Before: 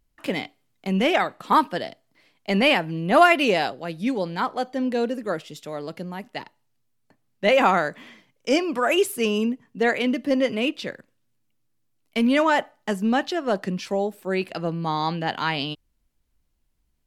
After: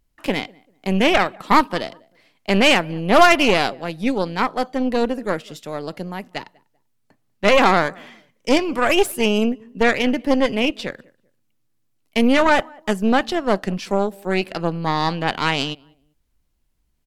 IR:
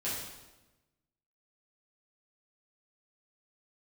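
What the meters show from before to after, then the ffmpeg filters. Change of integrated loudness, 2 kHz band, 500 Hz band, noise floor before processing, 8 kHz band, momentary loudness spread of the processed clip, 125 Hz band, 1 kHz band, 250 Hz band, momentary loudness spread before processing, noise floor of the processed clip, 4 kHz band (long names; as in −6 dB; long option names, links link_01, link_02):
+4.0 dB, +4.5 dB, +3.5 dB, −70 dBFS, +6.0 dB, 16 LU, +3.5 dB, +3.5 dB, +3.5 dB, 15 LU, −67 dBFS, +5.0 dB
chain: -filter_complex "[0:a]asplit=2[link_01][link_02];[link_02]adelay=195,lowpass=frequency=1500:poles=1,volume=-24dB,asplit=2[link_03][link_04];[link_04]adelay=195,lowpass=frequency=1500:poles=1,volume=0.28[link_05];[link_01][link_03][link_05]amix=inputs=3:normalize=0,aeval=exprs='0.596*(cos(1*acos(clip(val(0)/0.596,-1,1)))-cos(1*PI/2))+0.0944*(cos(6*acos(clip(val(0)/0.596,-1,1)))-cos(6*PI/2))':channel_layout=same,volume=2.5dB"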